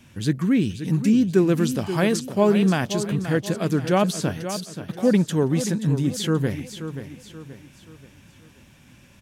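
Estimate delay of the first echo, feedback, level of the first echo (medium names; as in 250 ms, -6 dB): 530 ms, 41%, -10.5 dB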